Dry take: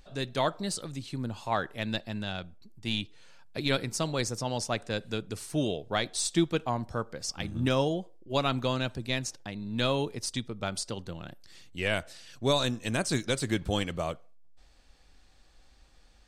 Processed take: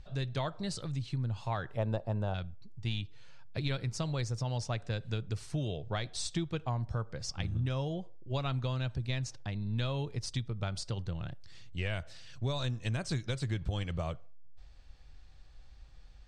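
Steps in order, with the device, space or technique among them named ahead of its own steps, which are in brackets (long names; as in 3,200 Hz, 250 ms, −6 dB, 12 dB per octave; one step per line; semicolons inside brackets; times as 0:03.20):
jukebox (low-pass filter 6,100 Hz 12 dB per octave; low shelf with overshoot 170 Hz +9 dB, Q 1.5; downward compressor 5 to 1, threshold −28 dBFS, peak gain reduction 10 dB)
0:01.77–0:02.34: octave-band graphic EQ 500/1,000/2,000/4,000 Hz +11/+9/−9/−12 dB
level −2.5 dB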